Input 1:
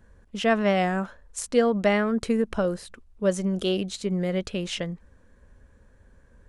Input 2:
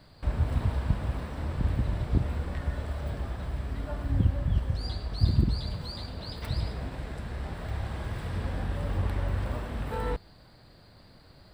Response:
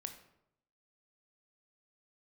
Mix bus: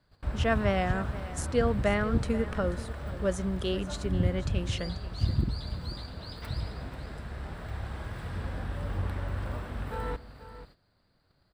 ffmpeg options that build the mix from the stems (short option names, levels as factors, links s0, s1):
-filter_complex "[0:a]volume=0.501,asplit=2[s0][s1];[s1]volume=0.168[s2];[1:a]volume=0.531,asplit=3[s3][s4][s5];[s4]volume=0.376[s6];[s5]volume=0.282[s7];[2:a]atrim=start_sample=2205[s8];[s6][s8]afir=irnorm=-1:irlink=0[s9];[s2][s7]amix=inputs=2:normalize=0,aecho=0:1:487:1[s10];[s0][s3][s9][s10]amix=inputs=4:normalize=0,agate=range=0.224:threshold=0.00224:ratio=16:detection=peak,equalizer=f=1400:t=o:w=0.59:g=4"